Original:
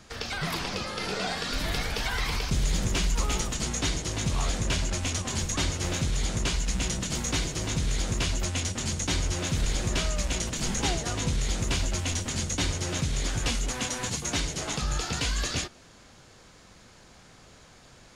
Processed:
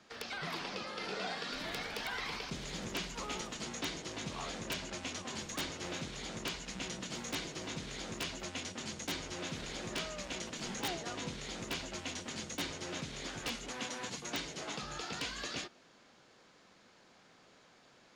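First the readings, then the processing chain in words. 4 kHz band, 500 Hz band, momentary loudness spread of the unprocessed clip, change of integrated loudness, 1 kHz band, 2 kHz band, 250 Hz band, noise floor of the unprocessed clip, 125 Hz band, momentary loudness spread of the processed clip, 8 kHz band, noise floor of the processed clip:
-8.5 dB, -7.5 dB, 2 LU, -11.0 dB, -7.5 dB, -7.5 dB, -10.0 dB, -53 dBFS, -18.5 dB, 3 LU, -13.5 dB, -63 dBFS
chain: three-band isolator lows -19 dB, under 170 Hz, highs -12 dB, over 5700 Hz; wrapped overs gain 19 dB; gain -7.5 dB

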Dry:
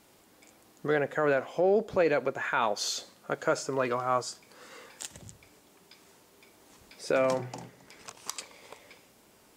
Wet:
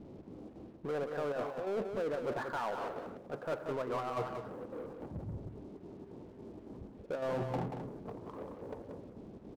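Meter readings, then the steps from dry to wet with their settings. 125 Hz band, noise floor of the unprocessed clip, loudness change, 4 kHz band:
-1.0 dB, -61 dBFS, -10.0 dB, -16.0 dB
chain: LPF 1300 Hz 24 dB/oct; low-pass opened by the level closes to 330 Hz, open at -24.5 dBFS; reverse; compressor 12:1, threshold -40 dBFS, peak gain reduction 20 dB; reverse; chopper 3.6 Hz, depth 65%, duty 75%; power-law curve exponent 0.5; crossover distortion -56.5 dBFS; on a send: echo 0.183 s -6.5 dB; on the sum: gain +3.5 dB

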